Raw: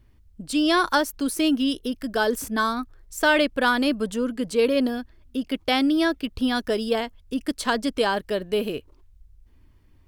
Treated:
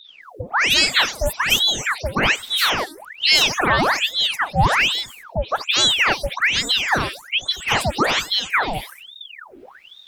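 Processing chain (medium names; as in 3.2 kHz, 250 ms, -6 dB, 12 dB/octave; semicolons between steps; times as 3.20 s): delay that grows with frequency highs late, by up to 215 ms; in parallel at +3 dB: compression, threshold -38 dBFS, peak gain reduction 21 dB; on the sum: de-hum 311.5 Hz, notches 5; ring modulator with a swept carrier 2 kHz, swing 85%, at 1.2 Hz; trim +5.5 dB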